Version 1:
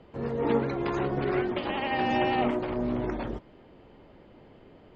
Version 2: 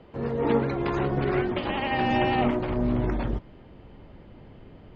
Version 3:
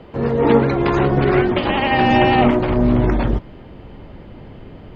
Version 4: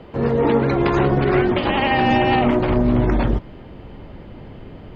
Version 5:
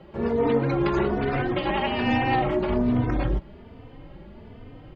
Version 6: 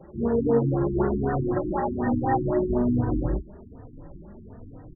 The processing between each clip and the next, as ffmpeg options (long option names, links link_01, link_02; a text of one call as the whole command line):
ffmpeg -i in.wav -af "lowpass=5700,asubboost=boost=2.5:cutoff=220,volume=2.5dB" out.wav
ffmpeg -i in.wav -af "acontrast=26,volume=5dB" out.wav
ffmpeg -i in.wav -af "alimiter=limit=-7.5dB:level=0:latency=1:release=106" out.wav
ffmpeg -i in.wav -filter_complex "[0:a]asplit=2[link_01][link_02];[link_02]adelay=3.2,afreqshift=1.2[link_03];[link_01][link_03]amix=inputs=2:normalize=1,volume=-3.5dB" out.wav
ffmpeg -i in.wav -filter_complex "[0:a]asplit=2[link_01][link_02];[link_02]adelay=30,volume=-10dB[link_03];[link_01][link_03]amix=inputs=2:normalize=0,afftfilt=real='re*lt(b*sr/1024,350*pow(2000/350,0.5+0.5*sin(2*PI*4*pts/sr)))':imag='im*lt(b*sr/1024,350*pow(2000/350,0.5+0.5*sin(2*PI*4*pts/sr)))':win_size=1024:overlap=0.75" out.wav